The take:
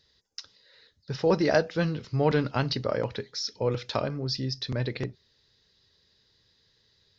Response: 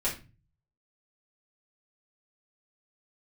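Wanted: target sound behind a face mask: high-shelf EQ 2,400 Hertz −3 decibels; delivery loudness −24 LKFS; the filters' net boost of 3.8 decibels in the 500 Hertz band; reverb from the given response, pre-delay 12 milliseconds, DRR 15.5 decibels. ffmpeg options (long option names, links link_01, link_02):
-filter_complex "[0:a]equalizer=frequency=500:width_type=o:gain=4.5,asplit=2[link_01][link_02];[1:a]atrim=start_sample=2205,adelay=12[link_03];[link_02][link_03]afir=irnorm=-1:irlink=0,volume=-22.5dB[link_04];[link_01][link_04]amix=inputs=2:normalize=0,highshelf=frequency=2400:gain=-3,volume=2dB"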